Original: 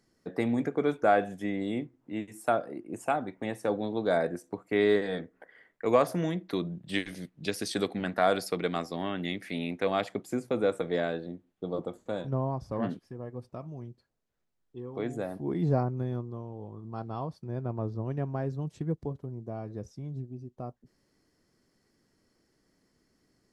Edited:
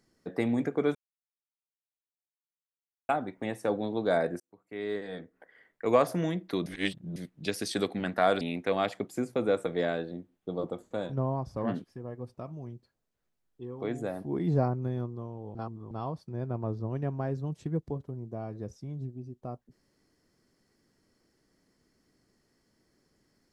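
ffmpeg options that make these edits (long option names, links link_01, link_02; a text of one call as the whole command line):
ffmpeg -i in.wav -filter_complex "[0:a]asplit=9[link_01][link_02][link_03][link_04][link_05][link_06][link_07][link_08][link_09];[link_01]atrim=end=0.95,asetpts=PTS-STARTPTS,afade=type=out:start_time=0.946:duration=0.004:curve=hsin[link_10];[link_02]atrim=start=0.95:end=3.09,asetpts=PTS-STARTPTS,volume=0[link_11];[link_03]atrim=start=3.09:end=4.4,asetpts=PTS-STARTPTS,afade=type=in:duration=0.004:curve=hsin,afade=type=out:start_time=1.306:duration=0.004:curve=hsin[link_12];[link_04]atrim=start=4.4:end=6.662,asetpts=PTS-STARTPTS,afade=type=in:duration=1.56[link_13];[link_05]atrim=start=6.658:end=7.162,asetpts=PTS-STARTPTS,areverse[link_14];[link_06]atrim=start=7.158:end=8.412[link_15];[link_07]atrim=start=9.558:end=16.702[link_16];[link_08]atrim=start=16.698:end=17.062,asetpts=PTS-STARTPTS,areverse[link_17];[link_09]atrim=start=17.058[link_18];[link_10][link_11][link_12][link_13]concat=n=4:v=0:a=1[link_19];[link_19][link_14]acrossfade=duration=0.004:curve1=hsin:curve2=hsin[link_20];[link_20][link_15]acrossfade=duration=0.004:curve1=hsin:curve2=hsin[link_21];[link_21][link_16]acrossfade=duration=0.004:curve1=hsin:curve2=hsin[link_22];[link_22][link_17]acrossfade=duration=0.004:curve1=hsin:curve2=hsin[link_23];[link_23][link_18]acrossfade=duration=0.004:curve1=hsin:curve2=hsin" out.wav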